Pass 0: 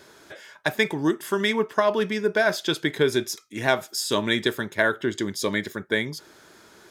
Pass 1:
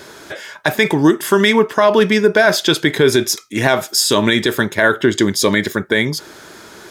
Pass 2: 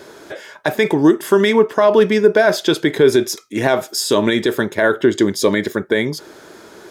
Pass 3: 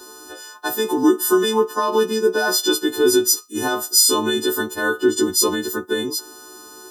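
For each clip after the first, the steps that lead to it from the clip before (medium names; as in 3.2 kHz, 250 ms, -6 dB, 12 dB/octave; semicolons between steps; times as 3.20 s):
loudness maximiser +14 dB; trim -1 dB
peaking EQ 440 Hz +7.5 dB 2.1 oct; trim -6 dB
partials quantised in pitch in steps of 3 st; static phaser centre 580 Hz, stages 6; trim -2 dB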